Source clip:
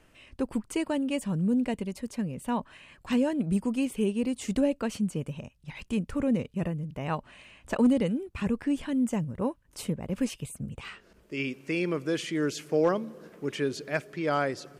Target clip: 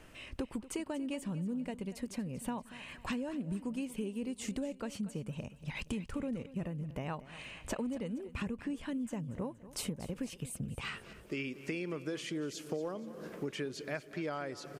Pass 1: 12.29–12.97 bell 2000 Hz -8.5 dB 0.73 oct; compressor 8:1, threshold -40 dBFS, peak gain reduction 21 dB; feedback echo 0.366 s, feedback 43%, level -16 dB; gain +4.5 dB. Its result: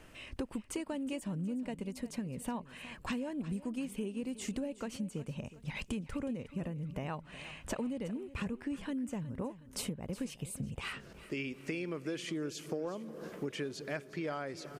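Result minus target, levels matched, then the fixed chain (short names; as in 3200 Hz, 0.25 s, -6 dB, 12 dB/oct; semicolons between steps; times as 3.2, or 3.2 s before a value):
echo 0.131 s late
12.29–12.97 bell 2000 Hz -8.5 dB 0.73 oct; compressor 8:1, threshold -40 dBFS, peak gain reduction 21 dB; feedback echo 0.235 s, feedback 43%, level -16 dB; gain +4.5 dB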